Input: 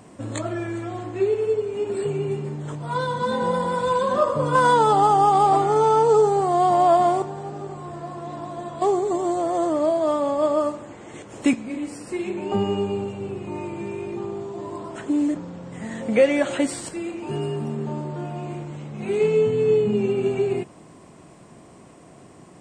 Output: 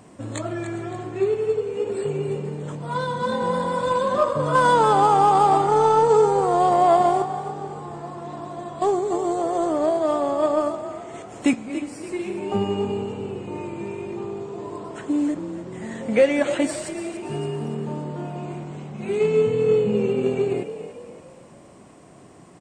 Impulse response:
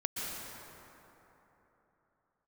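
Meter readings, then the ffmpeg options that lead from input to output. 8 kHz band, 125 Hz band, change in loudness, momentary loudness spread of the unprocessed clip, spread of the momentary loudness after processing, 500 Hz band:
0.0 dB, -0.5 dB, 0.0 dB, 17 LU, 17 LU, 0.0 dB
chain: -filter_complex "[0:a]asplit=6[s0][s1][s2][s3][s4][s5];[s1]adelay=285,afreqshift=40,volume=0.282[s6];[s2]adelay=570,afreqshift=80,volume=0.124[s7];[s3]adelay=855,afreqshift=120,volume=0.0543[s8];[s4]adelay=1140,afreqshift=160,volume=0.024[s9];[s5]adelay=1425,afreqshift=200,volume=0.0106[s10];[s0][s6][s7][s8][s9][s10]amix=inputs=6:normalize=0,aeval=exprs='0.531*(cos(1*acos(clip(val(0)/0.531,-1,1)))-cos(1*PI/2))+0.00944*(cos(7*acos(clip(val(0)/0.531,-1,1)))-cos(7*PI/2))':c=same"

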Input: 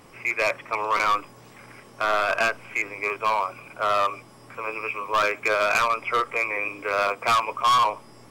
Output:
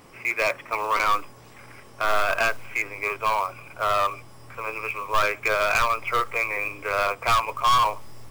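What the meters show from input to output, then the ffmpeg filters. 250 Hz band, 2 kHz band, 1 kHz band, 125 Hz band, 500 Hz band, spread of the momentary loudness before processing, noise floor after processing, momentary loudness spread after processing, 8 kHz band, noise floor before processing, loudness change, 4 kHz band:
-2.5 dB, 0.0 dB, 0.0 dB, +5.0 dB, -1.0 dB, 9 LU, -48 dBFS, 9 LU, +1.5 dB, -49 dBFS, 0.0 dB, 0.0 dB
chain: -af "asubboost=boost=7.5:cutoff=81,acrusher=bits=5:mode=log:mix=0:aa=0.000001"

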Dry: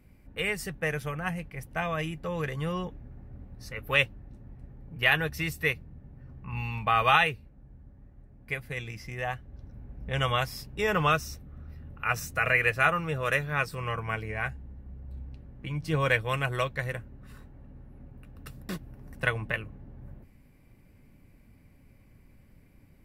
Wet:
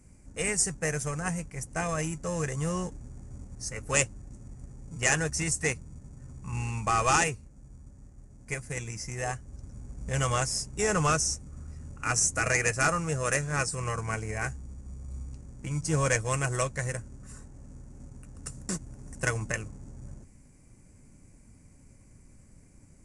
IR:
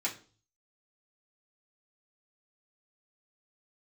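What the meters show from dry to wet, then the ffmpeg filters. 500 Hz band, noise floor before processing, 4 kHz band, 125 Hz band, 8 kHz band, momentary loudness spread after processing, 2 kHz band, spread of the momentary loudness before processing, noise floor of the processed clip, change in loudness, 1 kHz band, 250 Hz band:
0.0 dB, -58 dBFS, -2.5 dB, +1.5 dB, +18.0 dB, 21 LU, -3.5 dB, 22 LU, -56 dBFS, -0.5 dB, -2.0 dB, +1.5 dB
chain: -filter_complex "[0:a]asplit=2[s0][s1];[s1]acrusher=samples=38:mix=1:aa=0.000001,volume=0.251[s2];[s0][s2]amix=inputs=2:normalize=0,asoftclip=type=tanh:threshold=0.178,highshelf=f=5000:t=q:w=3:g=12,aresample=22050,aresample=44100"

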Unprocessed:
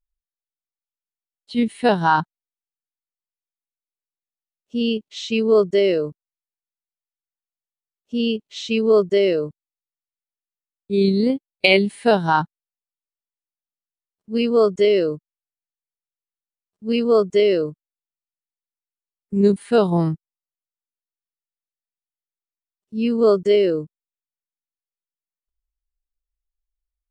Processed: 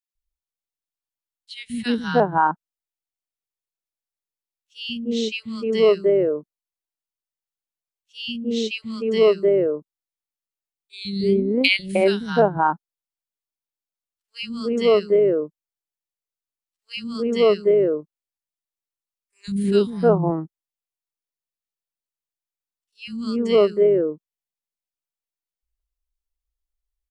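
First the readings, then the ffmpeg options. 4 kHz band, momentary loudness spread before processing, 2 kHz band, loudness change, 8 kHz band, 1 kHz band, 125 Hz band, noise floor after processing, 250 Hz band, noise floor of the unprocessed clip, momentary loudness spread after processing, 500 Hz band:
-0.5 dB, 12 LU, -2.0 dB, -1.5 dB, no reading, -1.0 dB, -2.5 dB, under -85 dBFS, -2.5 dB, under -85 dBFS, 16 LU, -0.5 dB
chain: -filter_complex "[0:a]equalizer=f=61:t=o:w=0.44:g=8,acrossover=split=200|1600[s0][s1][s2];[s0]adelay=150[s3];[s1]adelay=310[s4];[s3][s4][s2]amix=inputs=3:normalize=0"

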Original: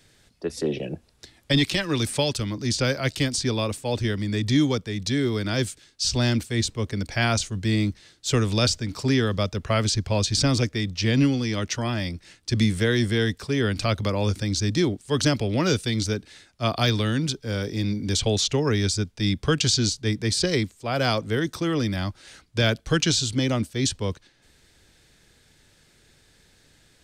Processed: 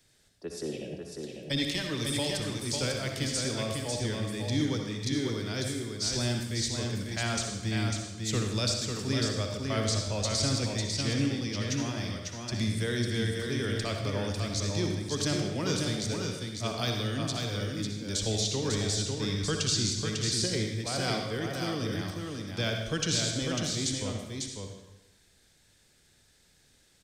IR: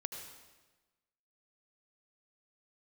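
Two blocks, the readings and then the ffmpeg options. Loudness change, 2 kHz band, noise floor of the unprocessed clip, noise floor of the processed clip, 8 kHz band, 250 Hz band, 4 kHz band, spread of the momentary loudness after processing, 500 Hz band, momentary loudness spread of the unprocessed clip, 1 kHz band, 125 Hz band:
-6.5 dB, -7.0 dB, -59 dBFS, -64 dBFS, -3.0 dB, -7.5 dB, -5.0 dB, 7 LU, -7.0 dB, 7 LU, -7.0 dB, -7.0 dB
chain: -filter_complex "[0:a]acrossover=split=410|4500[s0][s1][s2];[s2]acontrast=35[s3];[s0][s1][s3]amix=inputs=3:normalize=0,aecho=1:1:548:0.596[s4];[1:a]atrim=start_sample=2205,asetrate=57330,aresample=44100[s5];[s4][s5]afir=irnorm=-1:irlink=0,volume=0.531"

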